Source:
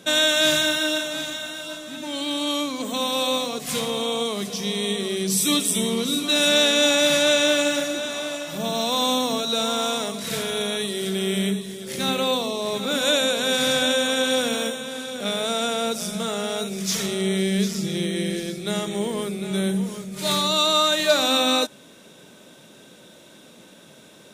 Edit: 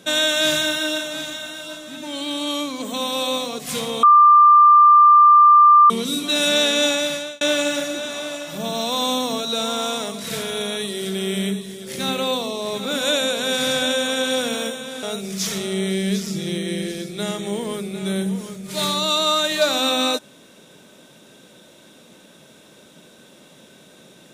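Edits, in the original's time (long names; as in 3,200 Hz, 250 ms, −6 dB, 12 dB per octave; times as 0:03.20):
0:04.03–0:05.90: beep over 1,190 Hz −7 dBFS
0:06.84–0:07.41: fade out
0:15.03–0:16.51: remove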